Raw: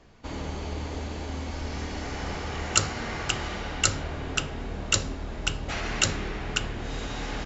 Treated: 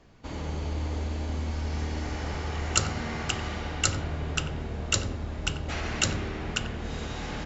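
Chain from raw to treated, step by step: peaking EQ 140 Hz +2.5 dB 1.9 oct; filtered feedback delay 91 ms, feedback 51%, low-pass 890 Hz, level -6 dB; trim -2.5 dB

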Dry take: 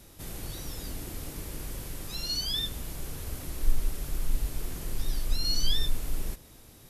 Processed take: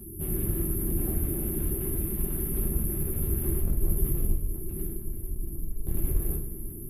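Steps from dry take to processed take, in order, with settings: FFT band-reject 440–10000 Hz; 4.32–5.87 s: compression 4:1, threshold -38 dBFS, peak gain reduction 16.5 dB; one-sided clip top -44 dBFS, bottom -27.5 dBFS; two-slope reverb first 0.33 s, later 3 s, from -18 dB, DRR -4.5 dB; trim +8.5 dB

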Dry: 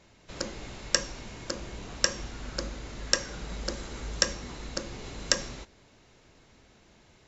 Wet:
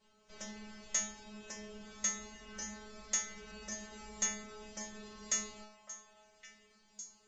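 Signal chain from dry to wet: formant shift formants +3 st; inharmonic resonator 210 Hz, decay 0.68 s, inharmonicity 0.002; repeats whose band climbs or falls 558 ms, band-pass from 860 Hz, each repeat 1.4 oct, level -7.5 dB; trim +7 dB

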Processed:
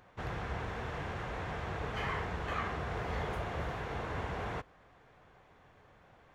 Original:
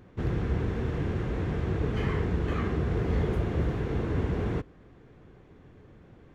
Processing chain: resonant low shelf 500 Hz -11.5 dB, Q 1.5

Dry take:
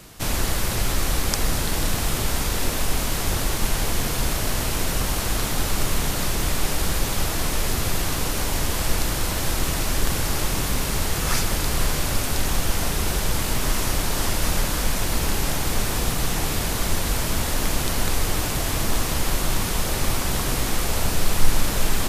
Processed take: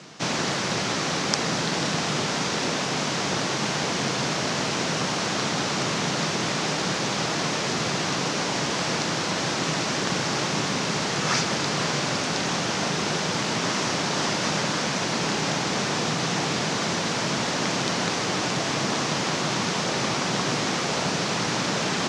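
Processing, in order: elliptic band-pass 150–6100 Hz, stop band 50 dB; trim +3 dB

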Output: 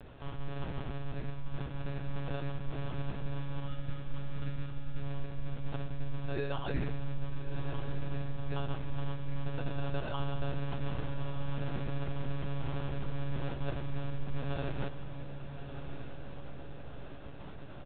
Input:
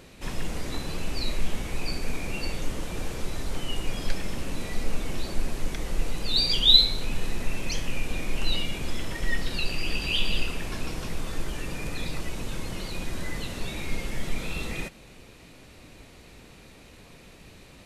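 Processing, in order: reverse; compression 6:1, threshold -33 dBFS, peak gain reduction 21.5 dB; reverse; sample-and-hold 21×; spectral selection erased 3.67–5.02 s, 440–990 Hz; monotone LPC vocoder at 8 kHz 140 Hz; doubling 16 ms -11 dB; on a send: echo that smears into a reverb 1232 ms, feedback 48%, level -9.5 dB

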